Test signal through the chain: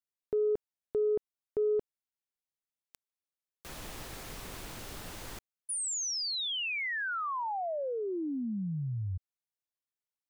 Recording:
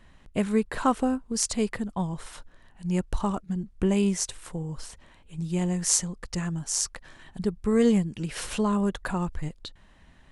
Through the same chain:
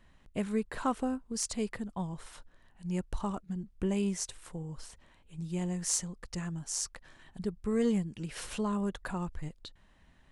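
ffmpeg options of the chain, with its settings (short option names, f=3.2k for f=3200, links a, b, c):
-af "asoftclip=type=tanh:threshold=-9.5dB,volume=-7dB"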